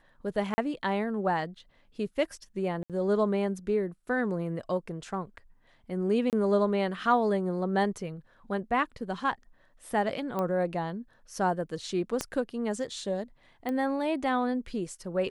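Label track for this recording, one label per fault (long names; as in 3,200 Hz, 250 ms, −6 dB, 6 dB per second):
0.540000	0.580000	drop-out 40 ms
2.830000	2.900000	drop-out 67 ms
6.300000	6.330000	drop-out 28 ms
10.390000	10.390000	click −19 dBFS
12.210000	12.210000	click −15 dBFS
13.690000	13.690000	click −21 dBFS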